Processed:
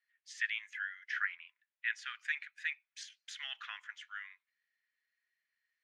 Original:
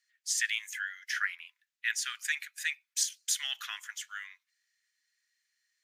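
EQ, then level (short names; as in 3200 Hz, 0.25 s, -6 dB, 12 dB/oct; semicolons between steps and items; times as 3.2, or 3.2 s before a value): Butterworth band-pass 1200 Hz, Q 0.54; -3.0 dB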